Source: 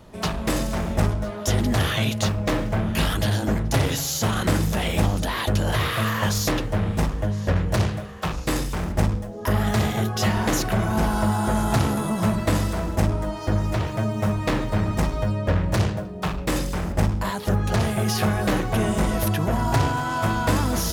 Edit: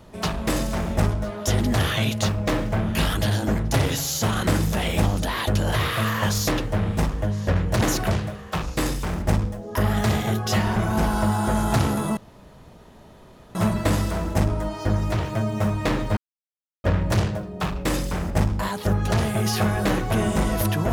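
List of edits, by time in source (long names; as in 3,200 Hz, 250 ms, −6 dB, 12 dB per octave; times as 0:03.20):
0:10.46–0:10.76: move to 0:07.81
0:12.17: splice in room tone 1.38 s
0:14.79–0:15.46: silence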